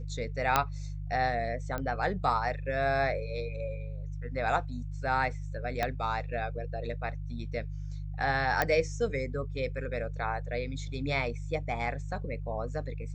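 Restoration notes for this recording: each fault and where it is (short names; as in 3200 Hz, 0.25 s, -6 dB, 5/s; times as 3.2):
hum 50 Hz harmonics 3 -37 dBFS
0.56 pop -8 dBFS
1.78 pop -21 dBFS
5.83 pop -15 dBFS
8.62 pop -12 dBFS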